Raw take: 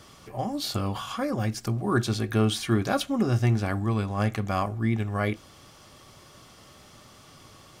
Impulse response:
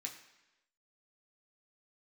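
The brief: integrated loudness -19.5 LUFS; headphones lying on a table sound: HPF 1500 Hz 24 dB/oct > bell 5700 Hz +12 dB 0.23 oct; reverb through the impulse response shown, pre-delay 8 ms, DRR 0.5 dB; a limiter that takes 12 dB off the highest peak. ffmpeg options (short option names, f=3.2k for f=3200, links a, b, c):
-filter_complex "[0:a]alimiter=limit=-22.5dB:level=0:latency=1,asplit=2[a][b];[1:a]atrim=start_sample=2205,adelay=8[c];[b][c]afir=irnorm=-1:irlink=0,volume=2dB[d];[a][d]amix=inputs=2:normalize=0,highpass=f=1.5k:w=0.5412,highpass=f=1.5k:w=1.3066,equalizer=f=5.7k:t=o:w=0.23:g=12,volume=14.5dB"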